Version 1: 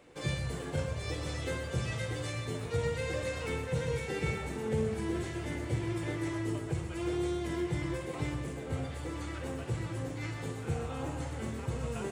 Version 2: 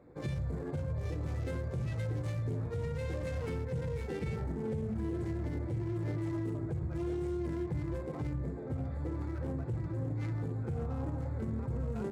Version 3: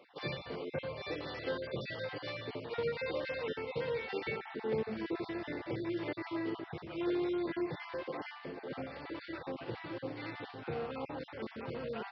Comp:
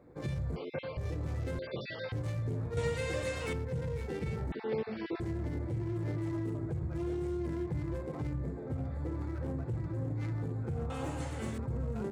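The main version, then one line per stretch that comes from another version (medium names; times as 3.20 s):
2
0.56–0.97 s: from 3
1.59–2.12 s: from 3
2.77–3.53 s: from 1
4.52–5.20 s: from 3
10.90–11.58 s: from 1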